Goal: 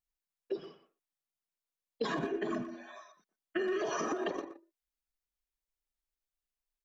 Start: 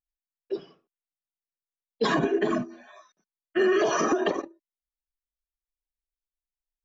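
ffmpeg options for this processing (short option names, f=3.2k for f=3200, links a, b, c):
-filter_complex "[0:a]acompressor=threshold=-32dB:ratio=6,asplit=2[a][b];[b]adelay=120,highpass=300,lowpass=3.4k,asoftclip=type=hard:threshold=-32.5dB,volume=-10dB[c];[a][c]amix=inputs=2:normalize=0"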